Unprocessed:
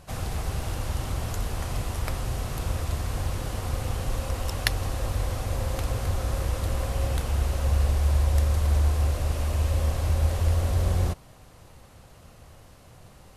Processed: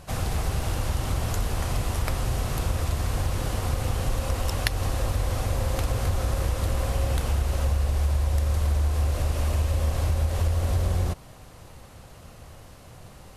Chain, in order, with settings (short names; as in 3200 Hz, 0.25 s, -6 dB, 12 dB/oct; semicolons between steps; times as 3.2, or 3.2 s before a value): compressor, threshold -24 dBFS, peak gain reduction 7.5 dB; gain +4 dB